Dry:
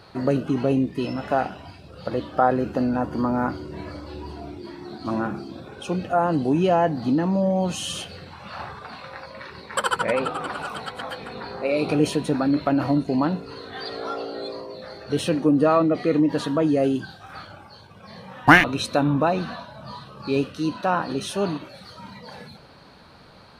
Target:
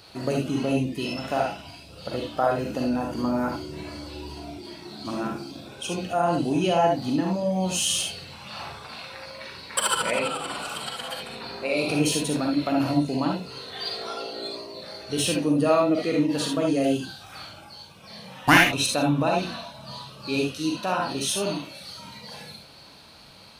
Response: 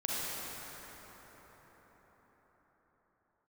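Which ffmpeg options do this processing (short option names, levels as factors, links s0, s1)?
-filter_complex "[0:a]aexciter=amount=2.2:drive=7.8:freq=2300[s0];[1:a]atrim=start_sample=2205,afade=t=out:st=0.13:d=0.01,atrim=end_sample=6174[s1];[s0][s1]afir=irnorm=-1:irlink=0,volume=0.596"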